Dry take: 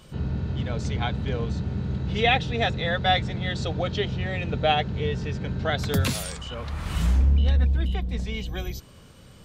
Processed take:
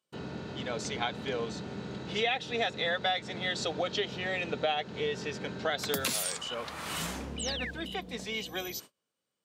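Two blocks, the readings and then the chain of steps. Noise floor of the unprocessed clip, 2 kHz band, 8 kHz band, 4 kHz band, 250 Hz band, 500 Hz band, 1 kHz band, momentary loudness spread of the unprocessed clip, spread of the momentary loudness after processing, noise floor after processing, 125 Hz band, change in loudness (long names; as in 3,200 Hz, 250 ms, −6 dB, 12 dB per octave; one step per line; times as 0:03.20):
−49 dBFS, −4.0 dB, +2.5 dB, −3.0 dB, −8.5 dB, −4.0 dB, −7.0 dB, 10 LU, 8 LU, below −85 dBFS, −18.5 dB, −7.5 dB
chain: high-pass filter 310 Hz 12 dB per octave
noise gate −48 dBFS, range −33 dB
high-shelf EQ 5,600 Hz +6.5 dB
downward compressor 5 to 1, threshold −27 dBFS, peak gain reduction 10.5 dB
sound drawn into the spectrogram fall, 0:07.39–0:07.71, 1,500–8,900 Hz −38 dBFS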